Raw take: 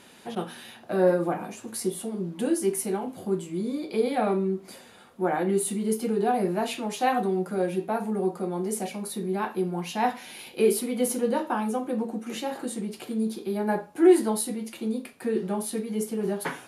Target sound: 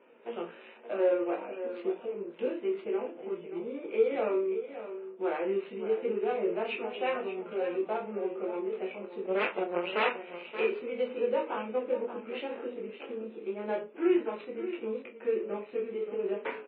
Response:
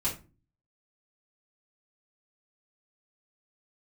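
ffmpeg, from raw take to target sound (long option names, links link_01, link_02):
-filter_complex "[0:a]bandreject=frequency=60:width_type=h:width=6,bandreject=frequency=120:width_type=h:width=6,bandreject=frequency=180:width_type=h:width=6,bandreject=frequency=240:width_type=h:width=6,bandreject=frequency=300:width_type=h:width=6,bandreject=frequency=360:width_type=h:width=6,bandreject=frequency=420:width_type=h:width=6,asplit=2[link_01][link_02];[link_02]acompressor=threshold=-33dB:ratio=8,volume=-2dB[link_03];[link_01][link_03]amix=inputs=2:normalize=0,flanger=delay=17:depth=3.9:speed=0.28,adynamicsmooth=sensitivity=8:basefreq=870,asplit=3[link_04][link_05][link_06];[link_04]afade=type=out:start_time=9.25:duration=0.02[link_07];[link_05]aeval=exprs='0.158*(cos(1*acos(clip(val(0)/0.158,-1,1)))-cos(1*PI/2))+0.0708*(cos(2*acos(clip(val(0)/0.158,-1,1)))-cos(2*PI/2))+0.00126*(cos(3*acos(clip(val(0)/0.158,-1,1)))-cos(3*PI/2))+0.0708*(cos(6*acos(clip(val(0)/0.158,-1,1)))-cos(6*PI/2))+0.00224*(cos(8*acos(clip(val(0)/0.158,-1,1)))-cos(8*PI/2))':channel_layout=same,afade=type=in:start_time=9.25:duration=0.02,afade=type=out:start_time=10.42:duration=0.02[link_08];[link_06]afade=type=in:start_time=10.42:duration=0.02[link_09];[link_07][link_08][link_09]amix=inputs=3:normalize=0,highpass=frequency=310:width=0.5412,highpass=frequency=310:width=1.3066,equalizer=frequency=310:width_type=q:width=4:gain=-5,equalizer=frequency=480:width_type=q:width=4:gain=4,equalizer=frequency=770:width_type=q:width=4:gain=-9,equalizer=frequency=1100:width_type=q:width=4:gain=-4,equalizer=frequency=1700:width_type=q:width=4:gain=-7,equalizer=frequency=2600:width_type=q:width=4:gain=7,lowpass=frequency=2700:width=0.5412,lowpass=frequency=2700:width=1.3066,asplit=2[link_10][link_11];[link_11]adelay=29,volume=-9dB[link_12];[link_10][link_12]amix=inputs=2:normalize=0,asplit=2[link_13][link_14];[link_14]aecho=0:1:577:0.266[link_15];[link_13][link_15]amix=inputs=2:normalize=0,volume=-1dB" -ar 12000 -c:a libmp3lame -b:a 16k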